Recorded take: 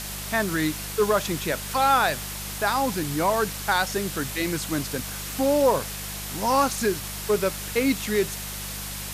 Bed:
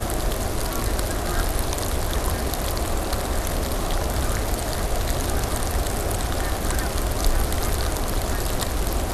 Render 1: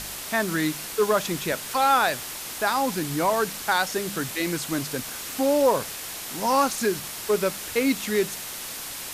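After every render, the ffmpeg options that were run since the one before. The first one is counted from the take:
-af "bandreject=f=50:t=h:w=4,bandreject=f=100:t=h:w=4,bandreject=f=150:t=h:w=4,bandreject=f=200:t=h:w=4"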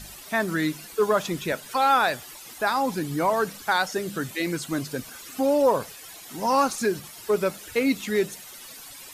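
-af "afftdn=nr=13:nf=-36"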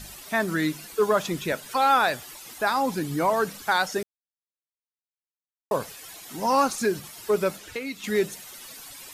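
-filter_complex "[0:a]asettb=1/sr,asplit=3[a][b][c];[a]atrim=end=7.574[d];[b]atrim=start=7.57:end=8.04,asetpts=PTS-STARTPTS,afade=t=in:d=0.004:c=qsin,afade=t=out:st=0.466:d=0.004:c=qsin,acrossover=split=950|7100[e][f][g];[e]acompressor=threshold=-35dB:ratio=4[h];[f]acompressor=threshold=-35dB:ratio=4[i];[g]acompressor=threshold=-54dB:ratio=4[j];[h][i][j]amix=inputs=3:normalize=0[k];[c]atrim=start=8.036[l];[d][k]acrossfade=d=0.004:c1=hsin:c2=qsin[m];[m][l]acrossfade=d=0.004:c1=qsin:c2=hsin,asplit=3[n][o][p];[n]atrim=end=4.03,asetpts=PTS-STARTPTS,afade=t=out:st=4.026:d=0.004:c=hsin[q];[o]atrim=start=4.03:end=5.71,asetpts=PTS-STARTPTS,volume=0[r];[p]atrim=start=5.71,asetpts=PTS-STARTPTS,afade=t=in:d=0.004:c=hsin[s];[q][r][s]concat=n=3:v=0:a=1"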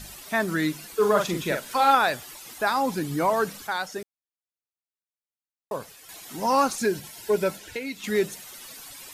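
-filter_complex "[0:a]asettb=1/sr,asplit=3[a][b][c];[a]atrim=end=0.964[d];[b]atrim=start=0.96:end=1.95,asetpts=PTS-STARTPTS,afade=t=in:d=0.004:c=qsin,afade=t=out:st=0.986:d=0.004:c=qsin,asplit=2[e][f];[f]adelay=44,volume=-5dB[g];[e][g]amix=inputs=2:normalize=0,atrim=end_sample=43659[h];[c]atrim=start=1.946[i];[d][h]acrossfade=d=0.004:c1=hsin:c2=qsin[j];[j][i]acrossfade=d=0.004:c1=qsin:c2=hsin,asettb=1/sr,asplit=3[k][l][m];[k]atrim=end=6.774[n];[l]atrim=start=6.77:end=7.97,asetpts=PTS-STARTPTS,afade=t=in:d=0.004:c=qsin,afade=t=out:st=1.196:d=0.004:c=qsin,asuperstop=centerf=1200:order=20:qfactor=5.6[o];[m]atrim=start=7.966[p];[n][o]acrossfade=d=0.004:c1=hsin:c2=qsin[q];[q][p]acrossfade=d=0.004:c1=qsin:c2=hsin,asplit=3[r][s][t];[r]atrim=end=3.672[u];[s]atrim=start=3.668:end=6.092,asetpts=PTS-STARTPTS,volume=-6dB[v];[t]atrim=start=6.088[w];[u][v]acrossfade=d=0.004:c1=hsin:c2=hsin[x];[x][w]acrossfade=d=0.004:c1=hsin:c2=hsin"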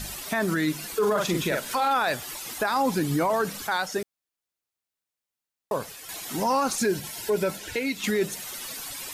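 -filter_complex "[0:a]asplit=2[a][b];[b]acompressor=threshold=-30dB:ratio=6,volume=0.5dB[c];[a][c]amix=inputs=2:normalize=0,alimiter=limit=-16dB:level=0:latency=1:release=19"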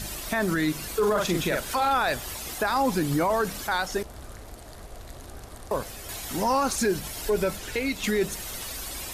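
-filter_complex "[1:a]volume=-18.5dB[a];[0:a][a]amix=inputs=2:normalize=0"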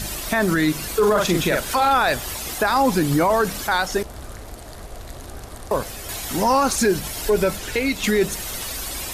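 -af "volume=6dB"

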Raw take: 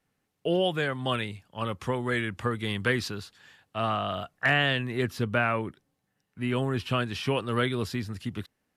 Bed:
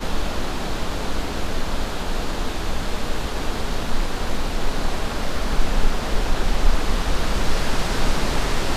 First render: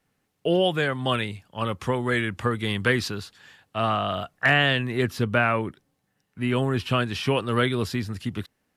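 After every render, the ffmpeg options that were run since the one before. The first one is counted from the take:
-af "volume=4dB"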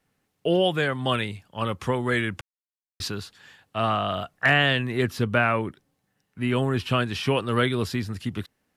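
-filter_complex "[0:a]asplit=3[a][b][c];[a]atrim=end=2.41,asetpts=PTS-STARTPTS,afade=t=out:st=2.406:d=0.004:c=hsin[d];[b]atrim=start=2.41:end=3,asetpts=PTS-STARTPTS,volume=0[e];[c]atrim=start=3,asetpts=PTS-STARTPTS,afade=t=in:d=0.004:c=hsin[f];[d][e][f]concat=n=3:v=0:a=1"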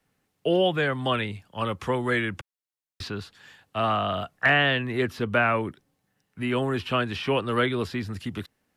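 -filter_complex "[0:a]acrossover=split=230|440|3900[a][b][c][d];[a]alimiter=level_in=5.5dB:limit=-24dB:level=0:latency=1,volume=-5.5dB[e];[d]acompressor=threshold=-49dB:ratio=6[f];[e][b][c][f]amix=inputs=4:normalize=0"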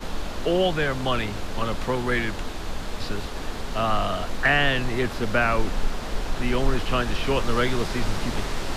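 -filter_complex "[1:a]volume=-6.5dB[a];[0:a][a]amix=inputs=2:normalize=0"

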